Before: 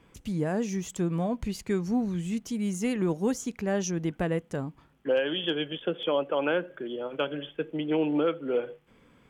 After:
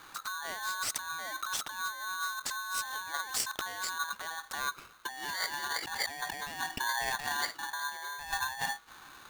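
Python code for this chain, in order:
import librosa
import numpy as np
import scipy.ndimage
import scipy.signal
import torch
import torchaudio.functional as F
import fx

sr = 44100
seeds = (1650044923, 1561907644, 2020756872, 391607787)

y = fx.over_compress(x, sr, threshold_db=-37.0, ratio=-1.0)
y = y * np.sign(np.sin(2.0 * np.pi * 1300.0 * np.arange(len(y)) / sr))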